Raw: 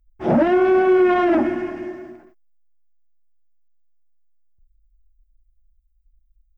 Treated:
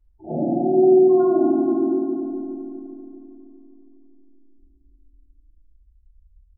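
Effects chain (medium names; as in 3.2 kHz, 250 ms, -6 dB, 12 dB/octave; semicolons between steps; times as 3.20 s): spectral gate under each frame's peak -10 dB strong; reverse; compression, threshold -31 dBFS, peak gain reduction 17 dB; reverse; flutter echo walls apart 8.7 m, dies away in 0.61 s; FDN reverb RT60 2.8 s, low-frequency decay 1.4×, high-frequency decay 0.55×, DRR -9 dB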